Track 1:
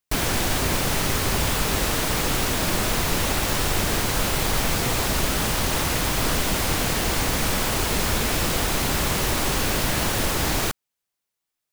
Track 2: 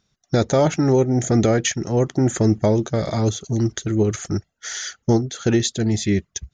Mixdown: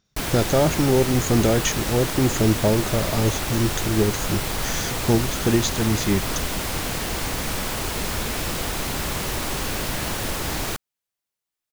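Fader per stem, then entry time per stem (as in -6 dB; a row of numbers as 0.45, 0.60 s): -3.5, -2.0 dB; 0.05, 0.00 s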